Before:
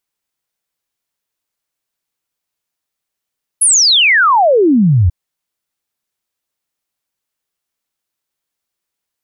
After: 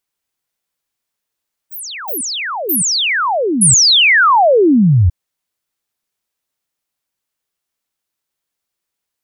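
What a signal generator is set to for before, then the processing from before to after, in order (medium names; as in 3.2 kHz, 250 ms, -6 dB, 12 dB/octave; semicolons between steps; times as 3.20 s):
log sweep 11 kHz -> 80 Hz 1.49 s -6.5 dBFS
ever faster or slower copies 136 ms, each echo +6 st, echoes 3, each echo -6 dB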